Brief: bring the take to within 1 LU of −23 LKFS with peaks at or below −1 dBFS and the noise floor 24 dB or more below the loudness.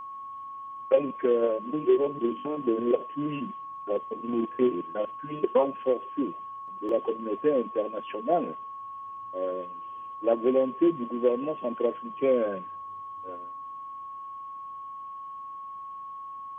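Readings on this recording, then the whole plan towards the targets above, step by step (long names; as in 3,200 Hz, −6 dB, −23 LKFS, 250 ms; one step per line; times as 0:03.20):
number of dropouts 1; longest dropout 1.9 ms; interfering tone 1,100 Hz; level of the tone −37 dBFS; integrated loudness −28.5 LKFS; sample peak −10.5 dBFS; target loudness −23.0 LKFS
→ repair the gap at 0:06.89, 1.9 ms
notch filter 1,100 Hz, Q 30
level +5.5 dB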